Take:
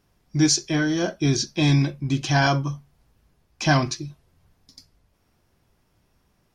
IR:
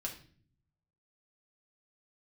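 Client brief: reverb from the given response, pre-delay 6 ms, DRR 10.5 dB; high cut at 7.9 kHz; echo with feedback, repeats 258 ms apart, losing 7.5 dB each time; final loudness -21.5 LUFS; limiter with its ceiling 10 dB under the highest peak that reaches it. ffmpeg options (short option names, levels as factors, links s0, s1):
-filter_complex "[0:a]lowpass=7900,alimiter=limit=0.15:level=0:latency=1,aecho=1:1:258|516|774|1032|1290:0.422|0.177|0.0744|0.0312|0.0131,asplit=2[s0][s1];[1:a]atrim=start_sample=2205,adelay=6[s2];[s1][s2]afir=irnorm=-1:irlink=0,volume=0.316[s3];[s0][s3]amix=inputs=2:normalize=0,volume=1.68"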